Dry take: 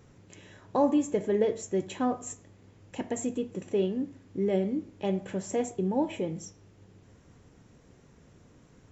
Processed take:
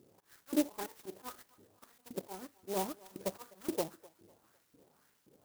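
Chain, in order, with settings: comb filter that takes the minimum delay 0.62 ms; slow attack 323 ms; time stretch by phase-locked vocoder 0.61×; in parallel at -6 dB: hysteresis with a dead band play -35.5 dBFS; on the sum: LFO band-pass saw up 1.9 Hz 320–4700 Hz; on a send: thinning echo 252 ms, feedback 48%, high-pass 440 Hz, level -21 dB; on the sum: sampling jitter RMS 0.11 ms; trim +5 dB

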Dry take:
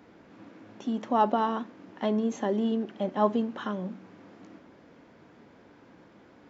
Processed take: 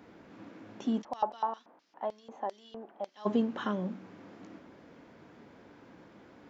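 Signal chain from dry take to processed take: 1.01–3.25 s: LFO band-pass square 6.2 Hz -> 1.3 Hz 810–5100 Hz

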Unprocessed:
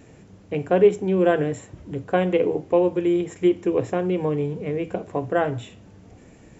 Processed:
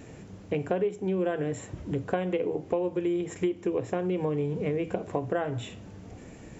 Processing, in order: compression 6:1, threshold -28 dBFS, peak gain reduction 16.5 dB; trim +2.5 dB

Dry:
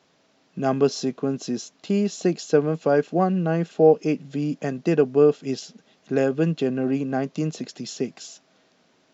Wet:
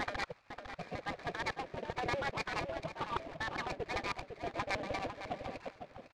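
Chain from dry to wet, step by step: slices played last to first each 118 ms, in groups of 8; peaking EQ 91 Hz +5 dB 2 oct; comb 0.8 ms, depth 56%; reverse; compression, threshold -25 dBFS, peak gain reduction 13 dB; reverse; spectral gate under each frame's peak -15 dB weak; wide varispeed 1.49×; brick-wall FIR low-pass 2.8 kHz; on a send: filtered feedback delay 503 ms, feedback 18%, low-pass 1.5 kHz, level -7 dB; on the sum: delay time shaken by noise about 1.8 kHz, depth 0.042 ms; trim +6.5 dB

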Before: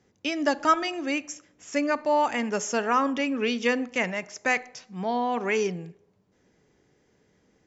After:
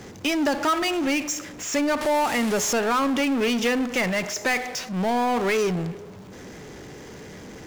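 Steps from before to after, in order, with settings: 2.01–2.73 s: one-bit delta coder 64 kbps, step -33.5 dBFS; compression 2:1, threshold -26 dBFS, peak gain reduction 6.5 dB; power-law waveshaper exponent 0.5

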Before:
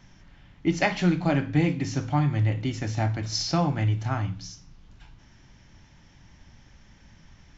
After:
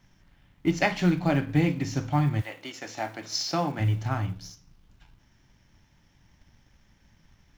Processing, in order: companding laws mixed up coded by A; 2.40–3.79 s: high-pass 690 Hz -> 200 Hz 12 dB/octave

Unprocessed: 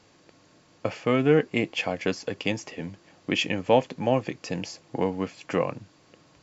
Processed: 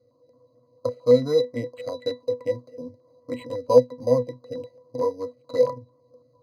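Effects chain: local Wiener filter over 25 samples; high-order bell 830 Hz +13 dB 2.5 oct; careless resampling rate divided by 8×, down none, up hold; treble shelf 2.8 kHz +12 dB; pitch-class resonator B, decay 0.17 s; step-sequenced notch 9 Hz 960–3100 Hz; trim +3.5 dB

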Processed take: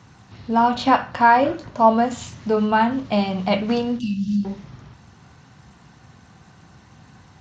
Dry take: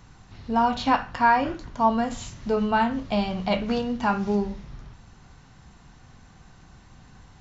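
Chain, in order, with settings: 0.77–2.05 s: peaking EQ 580 Hz +5 dB -> +12.5 dB 0.37 oct; 3.99–4.45 s: brick-wall FIR band-stop 340–2600 Hz; trim +4 dB; Speex 36 kbps 32 kHz

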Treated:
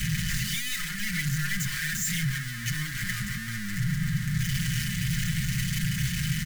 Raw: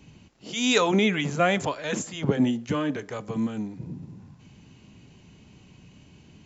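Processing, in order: one-bit comparator; elliptic band-stop 140–2000 Hz, stop band 80 dB; resonant high shelf 2.1 kHz -6 dB, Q 3; comb 5.6 ms, depth 88%; de-hum 47.99 Hz, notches 39; small resonant body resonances 290/530/3000 Hz, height 12 dB, ringing for 85 ms; trim +4 dB

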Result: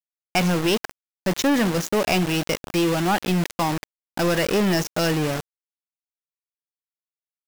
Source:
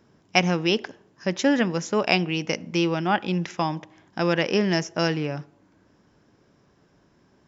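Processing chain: small samples zeroed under -30.5 dBFS; power-law waveshaper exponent 0.35; trim -9 dB

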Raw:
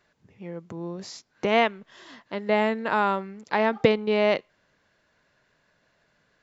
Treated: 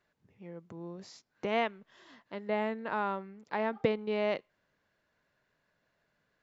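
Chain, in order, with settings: treble shelf 4.2 kHz -4.5 dB, from 2.47 s -10 dB, from 3.99 s -5 dB; trim -9 dB

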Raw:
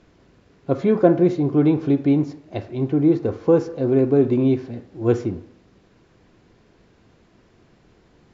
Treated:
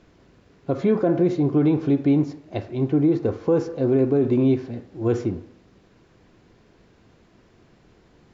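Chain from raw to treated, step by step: peak limiter -11 dBFS, peak gain reduction 9 dB

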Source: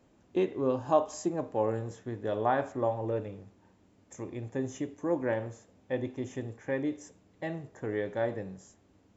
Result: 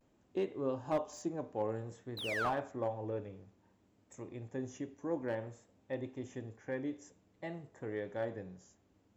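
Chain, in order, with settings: vibrato 0.56 Hz 50 cents; painted sound fall, 2.17–2.50 s, 1–4.2 kHz -26 dBFS; slew-rate limiter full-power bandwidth 65 Hz; trim -7 dB

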